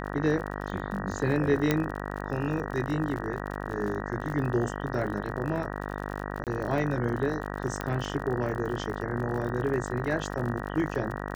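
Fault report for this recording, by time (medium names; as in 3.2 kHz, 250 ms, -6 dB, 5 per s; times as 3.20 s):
buzz 50 Hz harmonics 38 -35 dBFS
crackle 52 per s -35 dBFS
1.71 s: pop -10 dBFS
6.44–6.47 s: dropout 28 ms
7.81 s: pop -17 dBFS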